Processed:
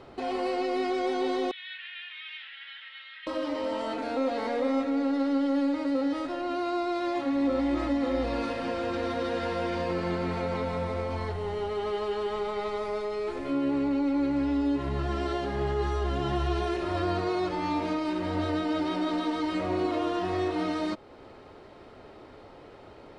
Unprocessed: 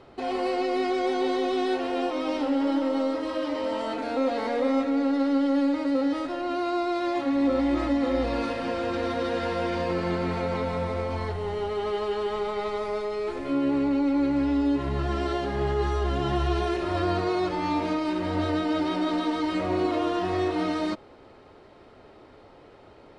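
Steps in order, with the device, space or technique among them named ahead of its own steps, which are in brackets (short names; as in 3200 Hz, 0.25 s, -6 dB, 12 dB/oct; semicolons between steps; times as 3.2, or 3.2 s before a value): 1.51–3.27 elliptic band-pass 1700–3600 Hz, stop band 80 dB; parallel compression (in parallel at 0 dB: compressor, threshold -40 dBFS, peak gain reduction 19 dB); on the sum: gain -4 dB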